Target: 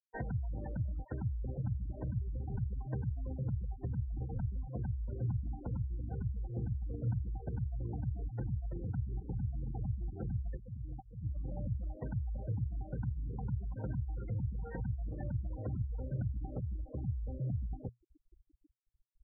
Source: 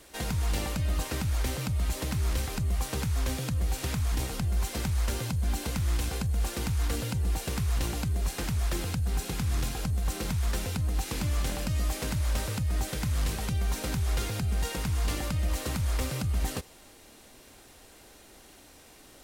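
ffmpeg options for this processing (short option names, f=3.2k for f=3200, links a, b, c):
-filter_complex "[0:a]asettb=1/sr,asplit=3[a][b][c];[a]atrim=end=10.574[d];[b]atrim=start=10.57:end=11.23,asetpts=PTS-STARTPTS,afade=t=in:d=0.004:c=qsin,afade=t=out:st=0.656:d=0.004:c=qsin,aemphasis=mode=production:type=riaa[e];[c]atrim=start=11.226[f];[d][e]acrossfade=d=0.004:c1=hsin:c2=qsin[g];[g][f]acrossfade=d=0.004:c1=qsin:c2=hsin,asplit=2[h][i];[i]adelay=1283,volume=-7dB,highshelf=f=4k:g=-28.9[j];[h][j]amix=inputs=2:normalize=0,acompressor=threshold=-36dB:ratio=12,lowpass=f=2.1k:w=0.5412,lowpass=f=2.1k:w=1.3066,afftfilt=real='re*gte(hypot(re,im),0.0158)':imag='im*gte(hypot(re,im),0.0158)':win_size=1024:overlap=0.75,asuperstop=centerf=1200:order=4:qfactor=4.1,equalizer=f=120:w=4.9:g=10,volume=1dB"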